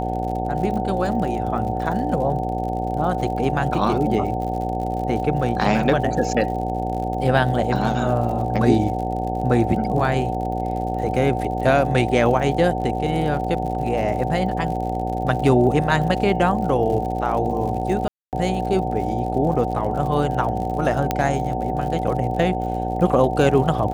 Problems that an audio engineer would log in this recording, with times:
mains buzz 60 Hz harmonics 15 −26 dBFS
surface crackle 66 per second −30 dBFS
whistle 750 Hz −26 dBFS
0:18.08–0:18.33: drop-out 248 ms
0:21.11: click −6 dBFS

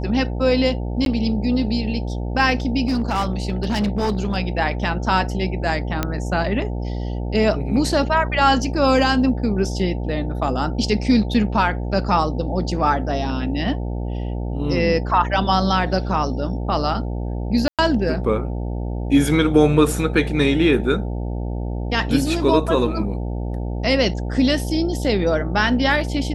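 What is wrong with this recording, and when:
mains buzz 60 Hz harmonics 15 −25 dBFS
0:01.05–0:01.06: drop-out 12 ms
0:02.87–0:04.37: clipping −16 dBFS
0:06.03: click −6 dBFS
0:17.68–0:17.79: drop-out 107 ms

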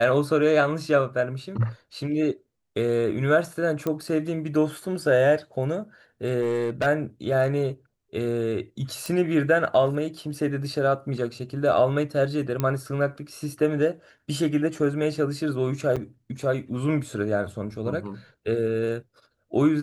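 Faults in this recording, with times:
0:03.87: click −14 dBFS
0:06.42–0:06.87: clipping −20 dBFS
0:09.06: click
0:12.60: click −12 dBFS
0:15.96–0:15.97: drop-out 6.5 ms

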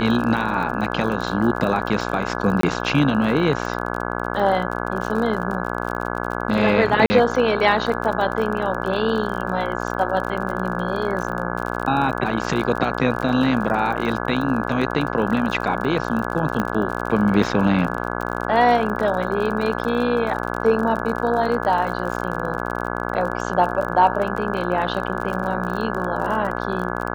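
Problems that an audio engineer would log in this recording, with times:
mains buzz 60 Hz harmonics 28 −26 dBFS
surface crackle 40 per second −27 dBFS
0:02.61–0:02.63: drop-out 23 ms
0:07.06–0:07.10: drop-out 40 ms
0:16.60: click −10 dBFS

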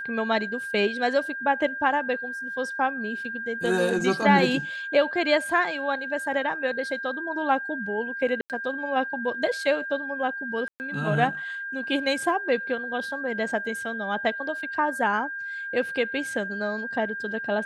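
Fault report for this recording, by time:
whistle 1,600 Hz −31 dBFS
0:08.41–0:08.50: drop-out 88 ms
0:10.68–0:10.80: drop-out 119 ms

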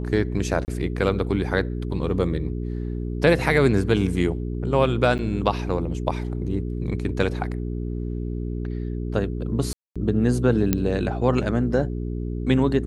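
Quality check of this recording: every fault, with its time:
mains hum 60 Hz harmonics 7 −28 dBFS
0:00.65–0:00.68: drop-out 29 ms
0:05.18–0:05.19: drop-out 9 ms
0:09.73–0:09.96: drop-out 226 ms
0:10.73: click −6 dBFS

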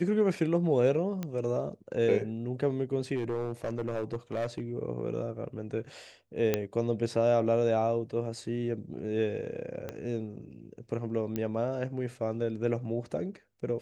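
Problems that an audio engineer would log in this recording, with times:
0:01.23: click −21 dBFS
0:03.15–0:04.61: clipping −27 dBFS
0:06.54: click −12 dBFS
0:09.89: click −22 dBFS
0:11.36: click −19 dBFS

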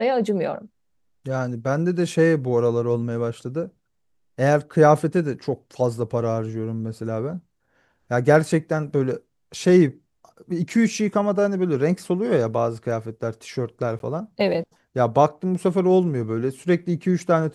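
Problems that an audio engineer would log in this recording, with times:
0:13.99–0:14.00: drop-out 12 ms

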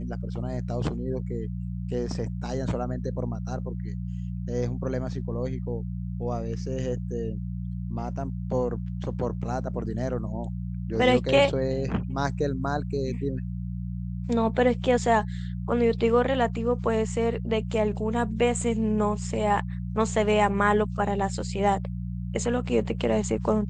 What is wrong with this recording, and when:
mains hum 60 Hz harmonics 3 −32 dBFS

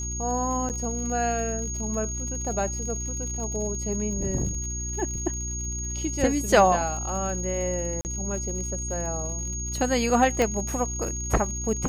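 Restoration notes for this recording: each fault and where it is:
surface crackle 81 per second −35 dBFS
mains hum 60 Hz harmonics 6 −33 dBFS
whistle 6,600 Hz −32 dBFS
0:00.69–0:00.70: drop-out 8.1 ms
0:08.01–0:08.05: drop-out 39 ms
0:10.42: click −11 dBFS

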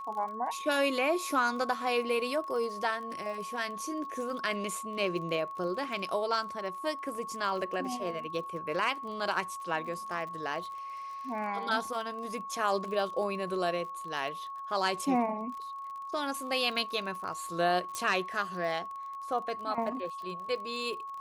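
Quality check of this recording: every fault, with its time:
surface crackle 34 per second −40 dBFS
whistle 1,100 Hz −38 dBFS
0:17.95: click −21 dBFS

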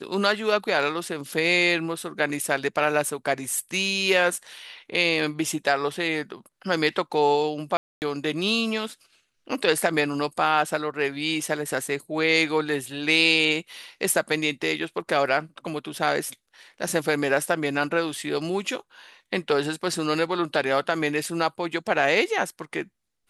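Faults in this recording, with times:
0:07.77–0:08.02: drop-out 249 ms

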